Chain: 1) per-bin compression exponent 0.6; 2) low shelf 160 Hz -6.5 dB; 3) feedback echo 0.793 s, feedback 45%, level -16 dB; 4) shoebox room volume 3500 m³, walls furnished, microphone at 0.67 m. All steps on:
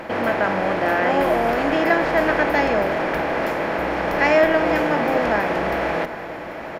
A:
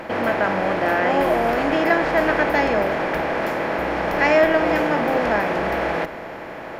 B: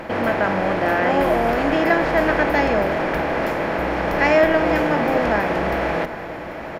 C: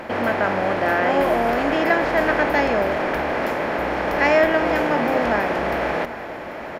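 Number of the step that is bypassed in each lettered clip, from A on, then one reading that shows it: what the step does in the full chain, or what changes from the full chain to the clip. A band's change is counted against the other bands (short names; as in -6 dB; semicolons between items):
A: 3, echo-to-direct -10.5 dB to -12.5 dB; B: 2, 125 Hz band +3.5 dB; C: 4, echo-to-direct -10.5 dB to -15.0 dB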